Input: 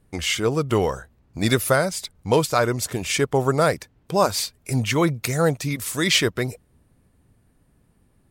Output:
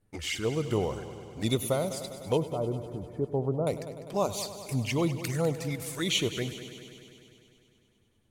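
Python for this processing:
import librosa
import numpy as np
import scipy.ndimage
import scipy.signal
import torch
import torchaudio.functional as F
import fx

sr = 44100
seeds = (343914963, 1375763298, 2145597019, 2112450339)

y = fx.env_flanger(x, sr, rest_ms=9.7, full_db=-18.5)
y = fx.gaussian_blur(y, sr, sigma=8.8, at=(2.37, 3.67))
y = fx.echo_heads(y, sr, ms=100, heads='first and second', feedback_pct=68, wet_db=-16)
y = y * 10.0 ** (-7.0 / 20.0)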